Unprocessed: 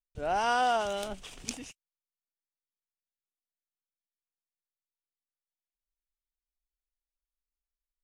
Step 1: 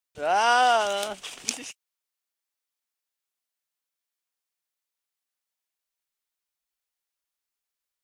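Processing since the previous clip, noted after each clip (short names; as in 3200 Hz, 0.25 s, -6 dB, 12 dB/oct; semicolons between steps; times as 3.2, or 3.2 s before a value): HPF 680 Hz 6 dB/oct; gain +9 dB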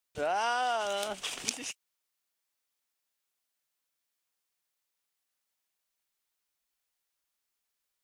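compressor 4:1, threshold -33 dBFS, peak gain reduction 13.5 dB; gain +3 dB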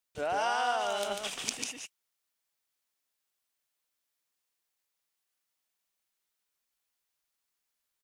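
echo 0.145 s -3.5 dB; gain -1.5 dB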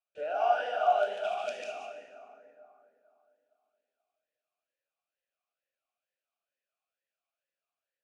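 plate-style reverb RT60 3.1 s, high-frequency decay 0.4×, DRR -0.5 dB; vowel sweep a-e 2.2 Hz; gain +6 dB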